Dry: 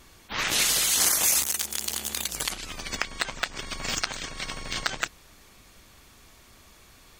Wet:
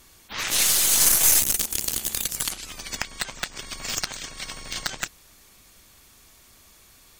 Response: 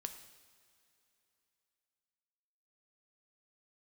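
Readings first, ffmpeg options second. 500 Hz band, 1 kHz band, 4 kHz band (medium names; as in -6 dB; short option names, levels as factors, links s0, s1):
-0.5 dB, -2.0 dB, +1.0 dB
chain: -af "aemphasis=mode=production:type=cd,asoftclip=type=tanh:threshold=0.596,aeval=exprs='0.596*(cos(1*acos(clip(val(0)/0.596,-1,1)))-cos(1*PI/2))+0.0596*(cos(3*acos(clip(val(0)/0.596,-1,1)))-cos(3*PI/2))+0.075*(cos(4*acos(clip(val(0)/0.596,-1,1)))-cos(4*PI/2))':c=same"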